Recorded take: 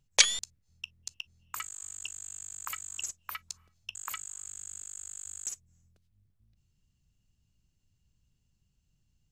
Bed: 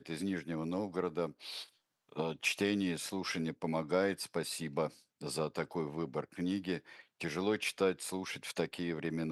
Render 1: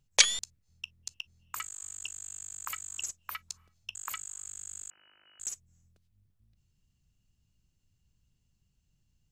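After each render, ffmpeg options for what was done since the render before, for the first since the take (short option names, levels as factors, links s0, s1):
-filter_complex "[0:a]asettb=1/sr,asplit=3[s0][s1][s2];[s0]atrim=end=4.904[s3];[s1]atrim=start=4.9:end=5.4,asetpts=PTS-STARTPTS,afade=t=in:d=0.004:c=qsin,afade=t=out:st=0.496:d=0.004:c=qsin,lowpass=f=2600:t=q:w=0.5098,lowpass=f=2600:t=q:w=0.6013,lowpass=f=2600:t=q:w=0.9,lowpass=f=2600:t=q:w=2.563,afreqshift=-3000[s4];[s2]atrim=start=5.396[s5];[s3][s4]acrossfade=d=0.004:c1=hsin:c2=qsin[s6];[s6][s5]acrossfade=d=0.004:c1=qsin:c2=hsin"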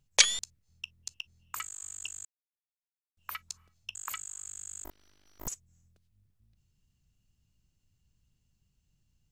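-filter_complex "[0:a]asettb=1/sr,asplit=3[s0][s1][s2];[s0]atrim=end=4.844[s3];[s1]atrim=start=4.84:end=5.48,asetpts=PTS-STARTPTS,afade=t=in:d=0.004:c=qsin,afade=t=out:st=0.636:d=0.004:c=qsin,aeval=exprs='abs(val(0))':c=same[s4];[s2]atrim=start=5.476[s5];[s3][s4]acrossfade=d=0.004:c1=hsin:c2=qsin[s6];[s6][s5]acrossfade=d=0.004:c1=qsin:c2=hsin,asplit=3[s7][s8][s9];[s7]atrim=end=2.25,asetpts=PTS-STARTPTS,afade=t=out:st=2.246:d=0.004:c=hsin[s10];[s8]atrim=start=2.25:end=3.17,asetpts=PTS-STARTPTS,volume=0[s11];[s9]atrim=start=3.17,asetpts=PTS-STARTPTS,afade=t=in:d=0.004:c=hsin[s12];[s10][s11][s12]concat=n=3:v=0:a=1"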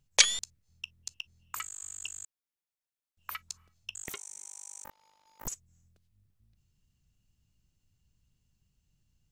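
-filter_complex "[0:a]asettb=1/sr,asplit=3[s0][s1][s2];[s0]atrim=end=4.044[s3];[s1]atrim=start=4.04:end=5.45,asetpts=PTS-STARTPTS,afade=t=in:d=0.004:c=qsin,afade=t=out:st=1.406:d=0.004:c=qsin,aeval=exprs='val(0)*sin(2*PI*890*n/s)':c=same[s4];[s2]atrim=start=5.446[s5];[s3][s4]acrossfade=d=0.004:c1=hsin:c2=qsin[s6];[s6][s5]acrossfade=d=0.004:c1=qsin:c2=hsin"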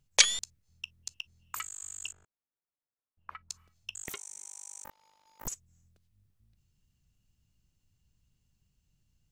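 -filter_complex "[0:a]asettb=1/sr,asplit=3[s0][s1][s2];[s0]atrim=end=2.124[s3];[s1]atrim=start=2.12:end=3.5,asetpts=PTS-STARTPTS,afade=t=in:d=0.004:c=qsin,afade=t=out:st=1.376:d=0.004:c=qsin,lowpass=1300[s4];[s2]atrim=start=3.496[s5];[s3][s4]acrossfade=d=0.004:c1=hsin:c2=qsin[s6];[s6][s5]acrossfade=d=0.004:c1=qsin:c2=hsin"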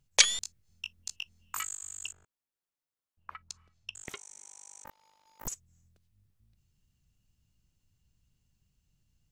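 -filter_complex "[0:a]asettb=1/sr,asplit=3[s0][s1][s2];[s0]atrim=end=0.394[s3];[s1]atrim=start=0.39:end=1.76,asetpts=PTS-STARTPTS,afade=t=in:d=0.004:c=qsin,afade=t=out:st=1.366:d=0.004:c=qsin,asplit=2[s4][s5];[s5]adelay=20,volume=0.708[s6];[s4][s6]amix=inputs=2:normalize=0,atrim=end_sample=60417[s7];[s2]atrim=start=1.756[s8];[s3][s7]acrossfade=d=0.004:c1=hsin:c2=qsin[s9];[s9][s8]acrossfade=d=0.004:c1=qsin:c2=hsin,asplit=3[s10][s11][s12];[s10]afade=t=out:st=3.48:d=0.02[s13];[s11]adynamicsmooth=sensitivity=2:basefreq=7200,afade=t=in:st=3.48:d=0.02,afade=t=out:st=4.86:d=0.02[s14];[s12]afade=t=in:st=4.86:d=0.02[s15];[s13][s14][s15]amix=inputs=3:normalize=0"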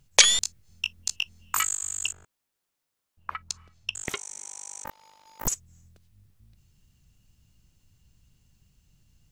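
-af "alimiter=level_in=3.35:limit=0.891:release=50:level=0:latency=1"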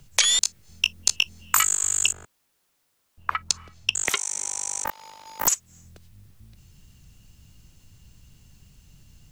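-filter_complex "[0:a]acrossover=split=170|720|4100[s0][s1][s2][s3];[s0]acompressor=threshold=0.00126:ratio=4[s4];[s1]acompressor=threshold=0.00355:ratio=4[s5];[s2]acompressor=threshold=0.0251:ratio=4[s6];[s3]acompressor=threshold=0.0355:ratio=4[s7];[s4][s5][s6][s7]amix=inputs=4:normalize=0,alimiter=level_in=3.55:limit=0.891:release=50:level=0:latency=1"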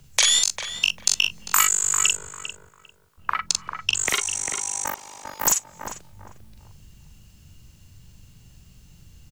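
-filter_complex "[0:a]asplit=2[s0][s1];[s1]adelay=42,volume=0.75[s2];[s0][s2]amix=inputs=2:normalize=0,asplit=2[s3][s4];[s4]adelay=398,lowpass=f=1700:p=1,volume=0.501,asplit=2[s5][s6];[s6]adelay=398,lowpass=f=1700:p=1,volume=0.28,asplit=2[s7][s8];[s8]adelay=398,lowpass=f=1700:p=1,volume=0.28,asplit=2[s9][s10];[s10]adelay=398,lowpass=f=1700:p=1,volume=0.28[s11];[s3][s5][s7][s9][s11]amix=inputs=5:normalize=0"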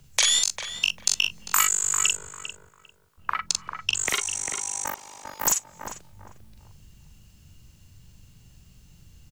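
-af "volume=0.75"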